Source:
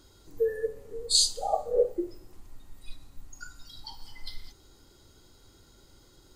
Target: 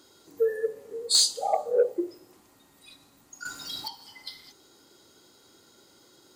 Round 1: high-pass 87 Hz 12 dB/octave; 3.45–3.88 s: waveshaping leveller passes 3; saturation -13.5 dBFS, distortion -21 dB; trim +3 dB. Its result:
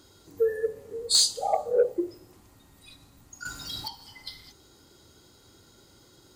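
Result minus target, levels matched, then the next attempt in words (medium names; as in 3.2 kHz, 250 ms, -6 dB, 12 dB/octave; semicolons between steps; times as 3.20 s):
125 Hz band +10.0 dB
high-pass 230 Hz 12 dB/octave; 3.45–3.88 s: waveshaping leveller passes 3; saturation -13.5 dBFS, distortion -21 dB; trim +3 dB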